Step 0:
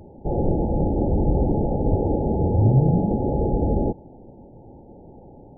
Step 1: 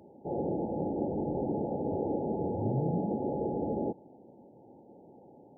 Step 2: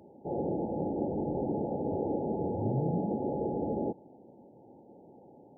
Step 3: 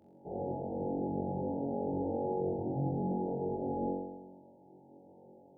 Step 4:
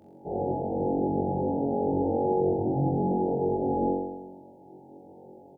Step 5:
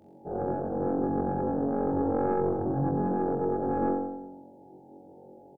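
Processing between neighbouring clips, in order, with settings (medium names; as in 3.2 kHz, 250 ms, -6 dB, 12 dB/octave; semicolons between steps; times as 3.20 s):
high-pass 200 Hz 12 dB/octave; trim -7.5 dB
no audible change
flutter echo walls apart 3.7 m, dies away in 1.1 s; trim -9 dB
doubling 19 ms -12 dB; trim +8 dB
tracing distortion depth 0.14 ms; feedback delay 90 ms, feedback 44%, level -12 dB; trim -2 dB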